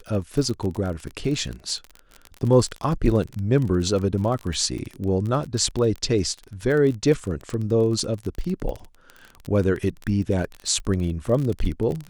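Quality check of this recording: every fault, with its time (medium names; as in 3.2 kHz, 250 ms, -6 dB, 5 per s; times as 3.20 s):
crackle 31 per s -27 dBFS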